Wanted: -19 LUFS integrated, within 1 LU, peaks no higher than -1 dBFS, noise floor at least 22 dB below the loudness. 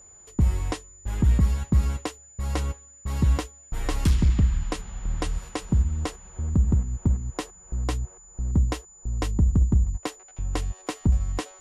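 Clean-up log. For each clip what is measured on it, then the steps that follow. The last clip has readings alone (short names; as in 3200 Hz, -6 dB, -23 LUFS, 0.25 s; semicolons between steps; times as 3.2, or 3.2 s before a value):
clipped 0.7%; flat tops at -13.0 dBFS; steady tone 7000 Hz; tone level -48 dBFS; loudness -26.5 LUFS; peak -13.0 dBFS; loudness target -19.0 LUFS
-> clip repair -13 dBFS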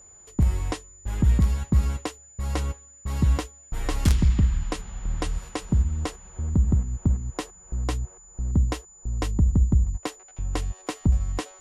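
clipped 0.0%; steady tone 7000 Hz; tone level -48 dBFS
-> notch 7000 Hz, Q 30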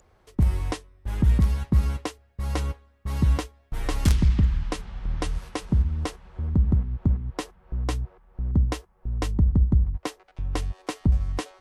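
steady tone none; loudness -26.5 LUFS; peak -4.0 dBFS; loudness target -19.0 LUFS
-> gain +7.5 dB; limiter -1 dBFS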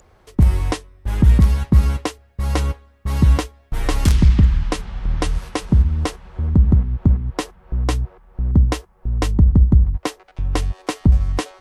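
loudness -19.0 LUFS; peak -1.0 dBFS; noise floor -54 dBFS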